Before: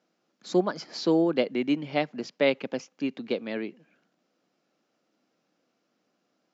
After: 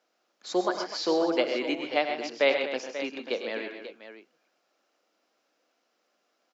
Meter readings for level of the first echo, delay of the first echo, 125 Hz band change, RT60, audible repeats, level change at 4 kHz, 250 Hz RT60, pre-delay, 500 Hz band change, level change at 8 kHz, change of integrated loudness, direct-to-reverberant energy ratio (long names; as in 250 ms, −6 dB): −17.5 dB, 64 ms, below −15 dB, no reverb audible, 5, +3.5 dB, no reverb audible, no reverb audible, 0.0 dB, can't be measured, −0.5 dB, no reverb audible